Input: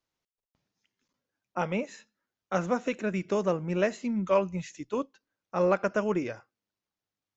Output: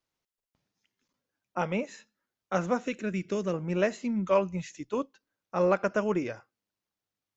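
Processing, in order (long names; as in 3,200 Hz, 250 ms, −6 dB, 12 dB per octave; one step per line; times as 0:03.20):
0:02.85–0:03.54: parametric band 830 Hz −11.5 dB 1.1 octaves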